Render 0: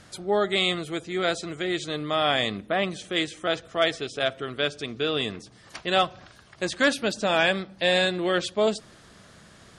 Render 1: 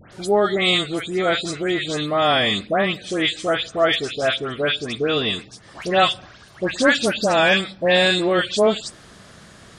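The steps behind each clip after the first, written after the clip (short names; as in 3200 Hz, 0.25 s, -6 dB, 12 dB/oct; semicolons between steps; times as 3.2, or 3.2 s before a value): dispersion highs, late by 0.127 s, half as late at 2200 Hz; gain +6 dB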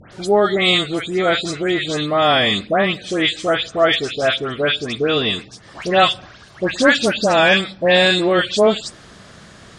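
LPF 8400 Hz 12 dB/oct; gain +3 dB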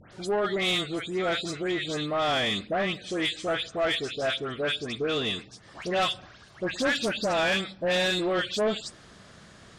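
soft clip -11.5 dBFS, distortion -13 dB; gain -8.5 dB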